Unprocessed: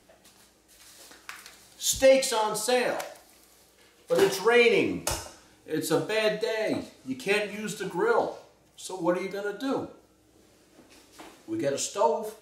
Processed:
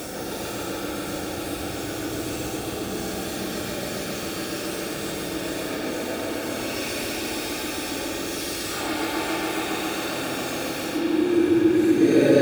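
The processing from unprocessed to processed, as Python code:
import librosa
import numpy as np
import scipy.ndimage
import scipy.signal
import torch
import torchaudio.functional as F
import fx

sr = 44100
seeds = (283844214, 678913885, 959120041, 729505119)

p1 = x + 0.5 * 10.0 ** (-36.5 / 20.0) * np.sign(x)
p2 = fx.rider(p1, sr, range_db=4, speed_s=0.5)
p3 = fx.paulstretch(p2, sr, seeds[0], factor=7.5, window_s=0.05, from_s=10.02)
p4 = fx.notch_comb(p3, sr, f0_hz=1000.0)
p5 = p4 + fx.echo_bbd(p4, sr, ms=137, stages=4096, feedback_pct=84, wet_db=-3, dry=0)
y = p5 * librosa.db_to_amplitude(5.5)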